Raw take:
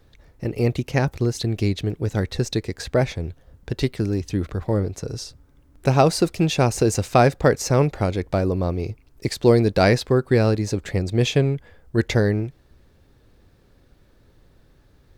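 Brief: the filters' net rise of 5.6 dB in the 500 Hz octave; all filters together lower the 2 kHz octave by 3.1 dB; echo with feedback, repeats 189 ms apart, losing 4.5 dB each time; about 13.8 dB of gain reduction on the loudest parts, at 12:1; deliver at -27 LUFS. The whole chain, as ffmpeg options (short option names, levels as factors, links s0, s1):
-af "equalizer=f=500:t=o:g=7,equalizer=f=2000:t=o:g=-4.5,acompressor=threshold=0.1:ratio=12,aecho=1:1:189|378|567|756|945|1134|1323|1512|1701:0.596|0.357|0.214|0.129|0.0772|0.0463|0.0278|0.0167|0.01,volume=0.794"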